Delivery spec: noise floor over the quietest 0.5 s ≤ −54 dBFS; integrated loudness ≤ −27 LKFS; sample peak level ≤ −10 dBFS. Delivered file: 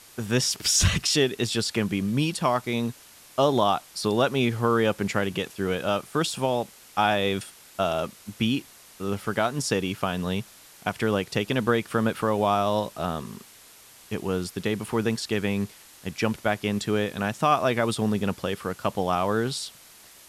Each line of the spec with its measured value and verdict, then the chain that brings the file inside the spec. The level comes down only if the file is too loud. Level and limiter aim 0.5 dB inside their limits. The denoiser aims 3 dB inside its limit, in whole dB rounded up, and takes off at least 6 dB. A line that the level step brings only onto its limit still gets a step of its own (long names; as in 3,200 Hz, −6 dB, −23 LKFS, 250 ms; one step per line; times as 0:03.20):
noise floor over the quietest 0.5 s −51 dBFS: out of spec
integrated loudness −26.0 LKFS: out of spec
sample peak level −8.0 dBFS: out of spec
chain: broadband denoise 6 dB, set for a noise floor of −51 dBFS
level −1.5 dB
brickwall limiter −10.5 dBFS